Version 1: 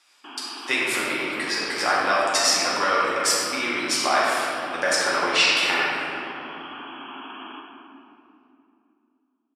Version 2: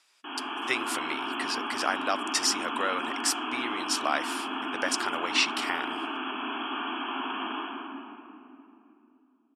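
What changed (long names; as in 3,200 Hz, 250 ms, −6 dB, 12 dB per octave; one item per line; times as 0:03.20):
speech: send off
background: send +7.0 dB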